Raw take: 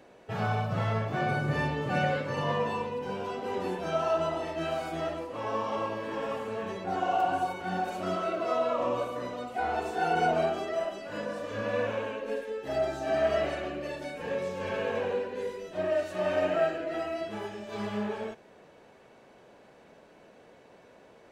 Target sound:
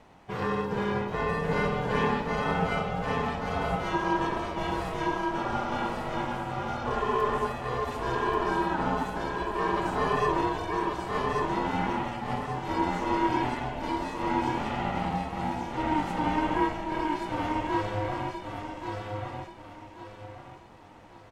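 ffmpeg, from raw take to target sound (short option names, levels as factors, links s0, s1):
-af "aecho=1:1:1133|2266|3399|4532:0.708|0.241|0.0818|0.0278,aeval=exprs='val(0)*sin(2*PI*310*n/s)':c=same,volume=1.41"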